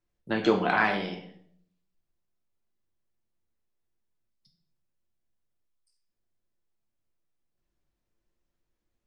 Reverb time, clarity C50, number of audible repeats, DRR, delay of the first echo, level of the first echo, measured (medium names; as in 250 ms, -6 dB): 0.65 s, 9.5 dB, no echo, 2.0 dB, no echo, no echo